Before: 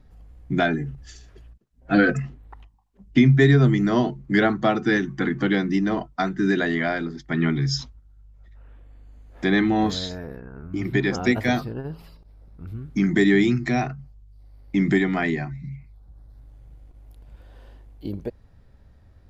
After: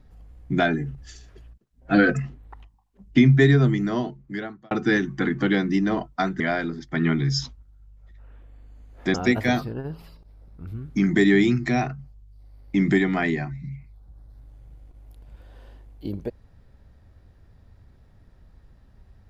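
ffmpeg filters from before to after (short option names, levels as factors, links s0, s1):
-filter_complex "[0:a]asplit=4[s0][s1][s2][s3];[s0]atrim=end=4.71,asetpts=PTS-STARTPTS,afade=t=out:st=3.37:d=1.34[s4];[s1]atrim=start=4.71:end=6.402,asetpts=PTS-STARTPTS,afade=t=in:d=0.004:c=hsin[s5];[s2]atrim=start=6.768:end=9.512[s6];[s3]atrim=start=11.138[s7];[s4][s5]concat=n=2:v=0:a=1[s8];[s8][s6]acrossfade=d=0.004:c1=hsin:c2=hsin[s9];[s9][s7]acrossfade=d=0.004:c1=hsin:c2=hsin"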